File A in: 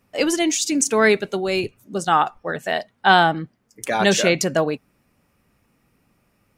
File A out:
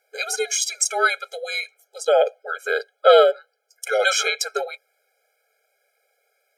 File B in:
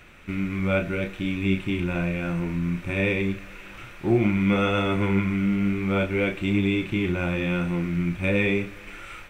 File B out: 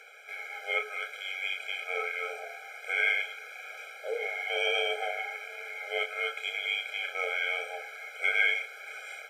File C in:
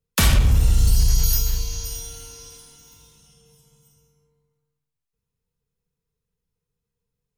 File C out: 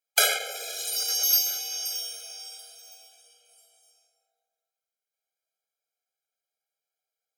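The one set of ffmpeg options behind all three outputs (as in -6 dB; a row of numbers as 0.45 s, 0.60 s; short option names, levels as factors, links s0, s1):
-af "afreqshift=-250,afftfilt=real='re*eq(mod(floor(b*sr/1024/420),2),1)':imag='im*eq(mod(floor(b*sr/1024/420),2),1)':win_size=1024:overlap=0.75,volume=1.5"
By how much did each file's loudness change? -1.0 LU, -6.0 LU, -4.0 LU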